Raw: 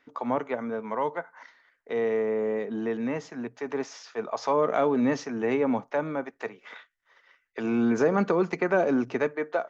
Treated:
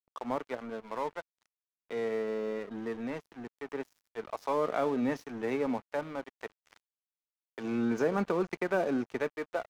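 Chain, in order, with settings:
dead-zone distortion −39 dBFS
level −5 dB

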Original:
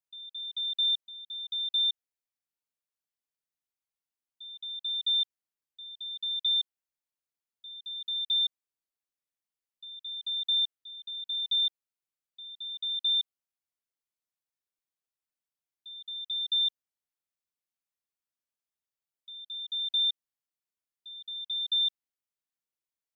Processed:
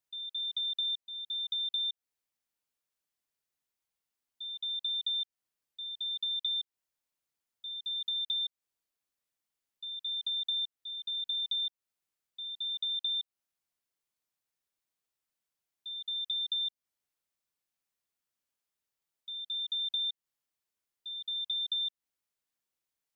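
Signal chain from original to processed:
downward compressor, threshold −36 dBFS, peak gain reduction 10.5 dB
level +4 dB

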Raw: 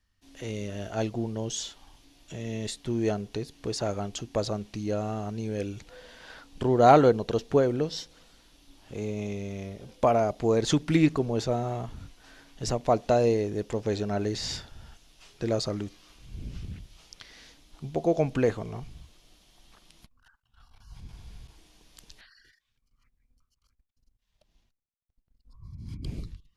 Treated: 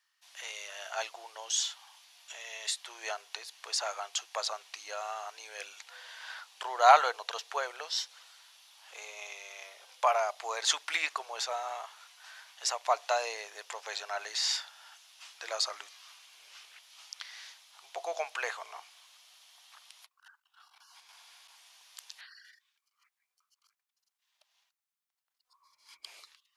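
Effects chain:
inverse Chebyshev high-pass filter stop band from 250 Hz, stop band 60 dB
level +4 dB

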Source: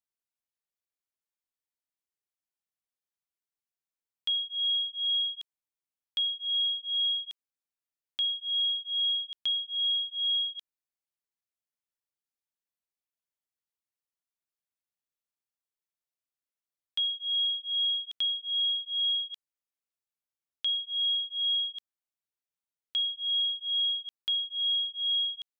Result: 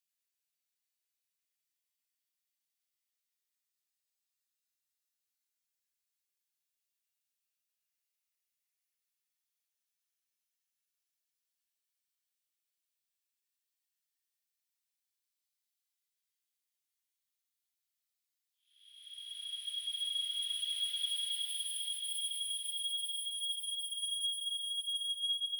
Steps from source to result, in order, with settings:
soft clipping −32 dBFS, distortion −12 dB
Bessel high-pass filter 2,400 Hz, order 8
four-comb reverb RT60 0.32 s, combs from 30 ms, DRR −7 dB
extreme stretch with random phases 27×, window 0.10 s, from 0:16.24
level −1.5 dB

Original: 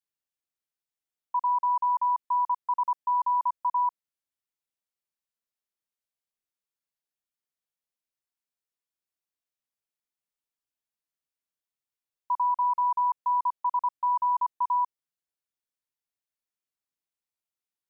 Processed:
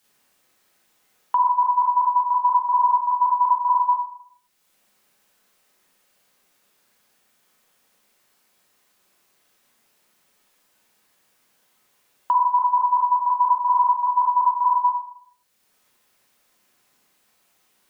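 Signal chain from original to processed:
four-comb reverb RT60 0.5 s, combs from 30 ms, DRR −5.5 dB
multiband upward and downward compressor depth 70%
level +3.5 dB

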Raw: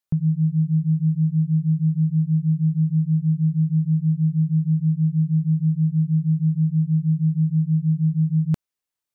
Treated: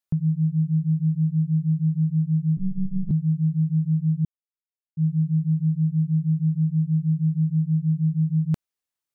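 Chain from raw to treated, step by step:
0:02.57–0:03.11: one-pitch LPC vocoder at 8 kHz 190 Hz
0:04.25–0:04.97: silence
level −2 dB

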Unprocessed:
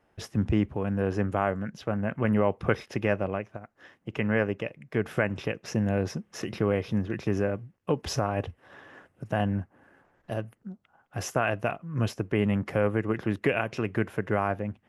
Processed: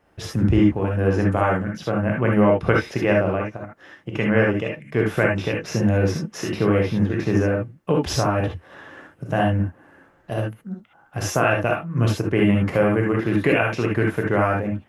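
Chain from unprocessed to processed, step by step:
reverb whose tail is shaped and stops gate 90 ms rising, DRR −1 dB
level +4.5 dB

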